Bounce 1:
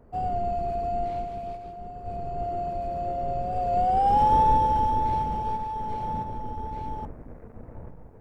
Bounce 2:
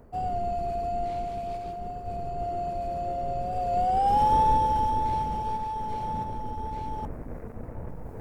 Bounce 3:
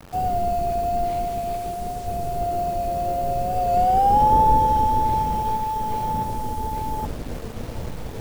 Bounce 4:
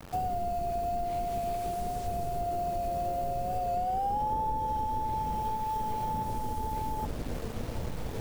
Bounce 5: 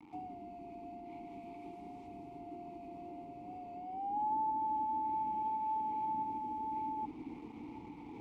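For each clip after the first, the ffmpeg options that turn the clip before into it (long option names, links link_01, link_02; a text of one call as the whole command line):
ffmpeg -i in.wav -af "highshelf=frequency=4000:gain=8,areverse,acompressor=mode=upward:threshold=-25dB:ratio=2.5,areverse,volume=-2dB" out.wav
ffmpeg -i in.wav -filter_complex "[0:a]acrossover=split=250|1100[link_01][link_02][link_03];[link_03]alimiter=level_in=11dB:limit=-24dB:level=0:latency=1,volume=-11dB[link_04];[link_01][link_02][link_04]amix=inputs=3:normalize=0,acrusher=bits=7:mix=0:aa=0.000001,volume=6.5dB" out.wav
ffmpeg -i in.wav -af "acompressor=threshold=-26dB:ratio=6,volume=-2.5dB" out.wav
ffmpeg -i in.wav -filter_complex "[0:a]asplit=3[link_01][link_02][link_03];[link_01]bandpass=frequency=300:width_type=q:width=8,volume=0dB[link_04];[link_02]bandpass=frequency=870:width_type=q:width=8,volume=-6dB[link_05];[link_03]bandpass=frequency=2240:width_type=q:width=8,volume=-9dB[link_06];[link_04][link_05][link_06]amix=inputs=3:normalize=0,volume=3dB" out.wav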